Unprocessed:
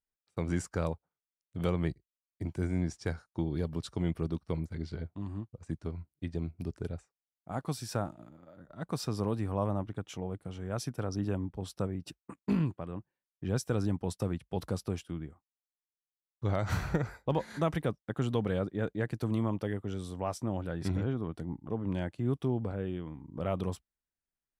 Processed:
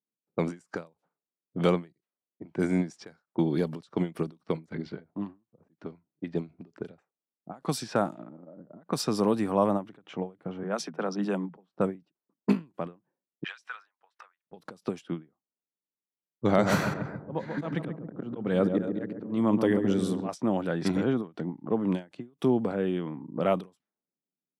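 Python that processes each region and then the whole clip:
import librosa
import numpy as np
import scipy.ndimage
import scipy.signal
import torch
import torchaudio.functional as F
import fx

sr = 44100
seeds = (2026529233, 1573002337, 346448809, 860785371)

y = fx.chain(x, sr, fx.cheby1_highpass(hz=160.0, order=10),
    fx.dynamic_eq(hz=310.0, q=1.8, threshold_db=-46.0, ratio=4.0, max_db=-5), at=(10.63, 11.69))
y = fx.chain(y, sr, fx.highpass(hz=1400.0, slope=24),
    fx.leveller(passes=1),
    fx.band_squash(depth_pct=100), at=(13.44, 14.47))
y = fx.chain(y, sr, fx.auto_swell(attack_ms=326.0),
    fx.low_shelf(hz=310.0, db=5.5),
    fx.echo_filtered(ms=137, feedback_pct=59, hz=910.0, wet_db=-5.5), at=(16.44, 20.29))
y = scipy.signal.sosfilt(scipy.signal.butter(4, 170.0, 'highpass', fs=sr, output='sos'), y)
y = fx.env_lowpass(y, sr, base_hz=320.0, full_db=-32.5)
y = fx.end_taper(y, sr, db_per_s=240.0)
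y = F.gain(torch.from_numpy(y), 9.0).numpy()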